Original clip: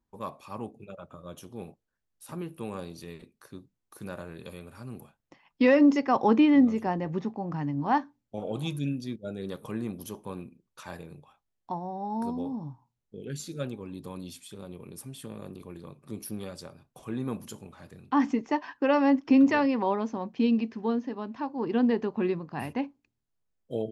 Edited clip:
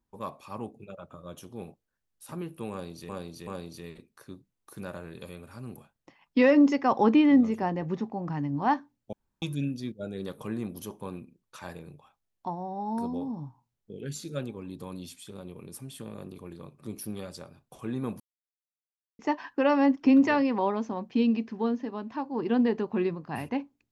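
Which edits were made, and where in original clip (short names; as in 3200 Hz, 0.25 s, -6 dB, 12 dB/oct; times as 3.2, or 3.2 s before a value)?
2.71–3.09 loop, 3 plays
8.37–8.66 room tone
17.44–18.43 mute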